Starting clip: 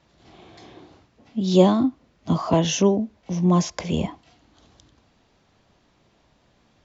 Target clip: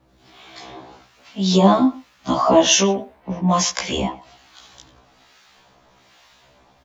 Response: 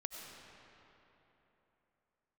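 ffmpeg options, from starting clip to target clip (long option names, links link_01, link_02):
-filter_complex "[0:a]asettb=1/sr,asplit=3[link_01][link_02][link_03];[link_01]atrim=end=2.914[link_04];[link_02]atrim=start=2.91:end=3.51,asetpts=PTS-STARTPTS,afade=type=in:duration=0.004:curve=qsin,afade=type=out:start_time=0.596:duration=0.004:curve=qsin,lowpass=2300[link_05];[link_03]atrim=start=3.506[link_06];[link_04][link_05]acrossfade=duration=0.004:curve1=hsin:curve2=qsin[link_07];[link_07][link_06]acrossfade=duration=0.004:curve1=qsin:curve2=hsin,acrossover=split=630[link_08][link_09];[link_09]dynaudnorm=framelen=320:gausssize=3:maxgain=11.5dB[link_10];[link_08][link_10]amix=inputs=2:normalize=0,acrusher=bits=11:mix=0:aa=0.000001,acrossover=split=1100[link_11][link_12];[link_11]aeval=exprs='val(0)*(1-0.7/2+0.7/2*cos(2*PI*1.2*n/s))':channel_layout=same[link_13];[link_12]aeval=exprs='val(0)*(1-0.7/2-0.7/2*cos(2*PI*1.2*n/s))':channel_layout=same[link_14];[link_13][link_14]amix=inputs=2:normalize=0,asplit=2[link_15][link_16];[link_16]adelay=120,highpass=300,lowpass=3400,asoftclip=type=hard:threshold=-9.5dB,volume=-18dB[link_17];[link_15][link_17]amix=inputs=2:normalize=0,alimiter=level_in=6.5dB:limit=-1dB:release=50:level=0:latency=1,afftfilt=real='re*1.73*eq(mod(b,3),0)':imag='im*1.73*eq(mod(b,3),0)':win_size=2048:overlap=0.75"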